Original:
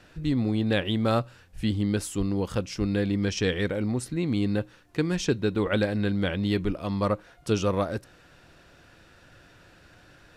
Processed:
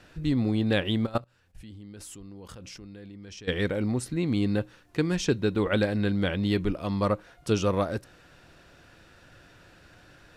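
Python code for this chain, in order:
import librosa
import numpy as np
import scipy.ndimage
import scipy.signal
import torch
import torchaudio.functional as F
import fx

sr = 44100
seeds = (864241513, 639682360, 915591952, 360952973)

y = fx.level_steps(x, sr, step_db=22, at=(1.05, 3.47), fade=0.02)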